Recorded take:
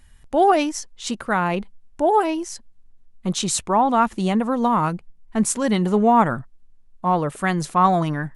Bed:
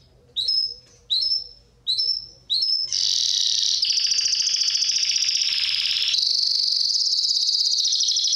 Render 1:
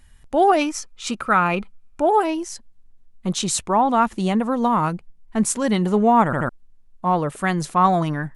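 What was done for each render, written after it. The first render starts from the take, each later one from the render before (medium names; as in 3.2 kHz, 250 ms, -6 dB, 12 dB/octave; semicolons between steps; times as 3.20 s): 0.61–2.13 s: small resonant body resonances 1.3/2.4 kHz, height 13 dB, ringing for 25 ms; 6.25 s: stutter in place 0.08 s, 3 plays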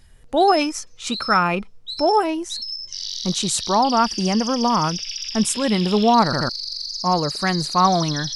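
add bed -8.5 dB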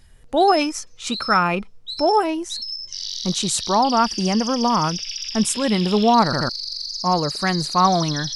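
no audible change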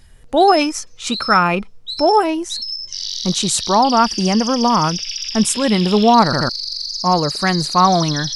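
trim +4 dB; peak limiter -1 dBFS, peak gain reduction 1.5 dB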